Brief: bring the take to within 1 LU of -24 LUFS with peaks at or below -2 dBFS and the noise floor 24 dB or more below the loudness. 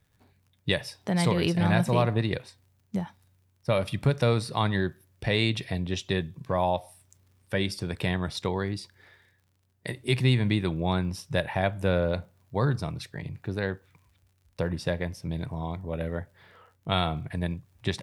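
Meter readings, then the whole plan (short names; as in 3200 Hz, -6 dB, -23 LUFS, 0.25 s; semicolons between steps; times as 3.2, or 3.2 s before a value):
ticks 39/s; loudness -28.5 LUFS; peak -9.0 dBFS; loudness target -24.0 LUFS
-> de-click; gain +4.5 dB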